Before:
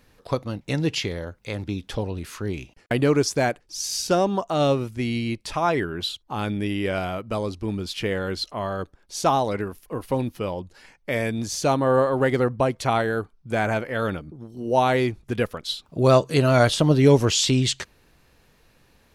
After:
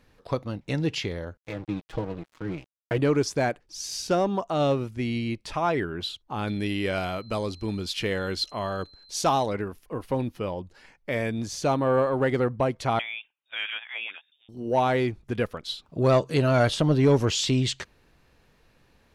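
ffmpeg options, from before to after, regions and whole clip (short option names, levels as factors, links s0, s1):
-filter_complex "[0:a]asettb=1/sr,asplit=3[s0][s1][s2];[s0]atrim=end=1.374[s3];[s1]atrim=start=1.37:end=2.98,asetpts=PTS-STARTPTS,afade=t=in:d=0.004:c=qsin,afade=t=out:st=1.606:d=0.004:c=qsin,lowpass=f=2300:p=1,aecho=1:1:6.3:0.83,atrim=end_sample=71001,aeval=exprs='sgn(val(0))*max(abs(val(0))-0.0141,0)':c=same[s4];[s2]atrim=start=2.976[s5];[s3][s4]acrossfade=d=0.004:c1=hsin:c2=qsin[s6];[s6][s5]acrossfade=d=0.004:c1=qsin:c2=hsin,asettb=1/sr,asplit=3[s7][s8][s9];[s7]atrim=end=6.474[s10];[s8]atrim=start=6.47:end=9.46,asetpts=PTS-STARTPTS,afade=t=in:d=0.004:c=qsin,afade=t=out:st=2.986:d=0.004:c=qsin,highshelf=f=2800:g=8.5,aeval=exprs='val(0)+0.00447*sin(2*PI*4100*n/s)':c=same[s11];[s9]atrim=start=9.456[s12];[s10][s11]acrossfade=d=0.004:c1=hsin:c2=qsin[s13];[s13][s12]acrossfade=d=0.004:c1=qsin:c2=hsin,asettb=1/sr,asplit=3[s14][s15][s16];[s14]atrim=end=12.994[s17];[s15]atrim=start=12.99:end=14.49,asetpts=PTS-STARTPTS,afade=t=in:d=0.004:c=qsin,afade=t=out:st=1.496:d=0.004:c=qsin,highpass=1000,lowpass=f=3300:t=q:w=0.5098,lowpass=f=3300:t=q:w=0.6013,lowpass=f=3300:t=q:w=0.9,lowpass=f=3300:t=q:w=2.563,afreqshift=-3900[s18];[s16]atrim=start=14.486[s19];[s17][s18]acrossfade=d=0.004:c1=hsin:c2=qsin[s20];[s20][s19]acrossfade=d=0.004:c1=qsin:c2=hsin,highshelf=f=6600:g=-8.5,acontrast=71,volume=0.355"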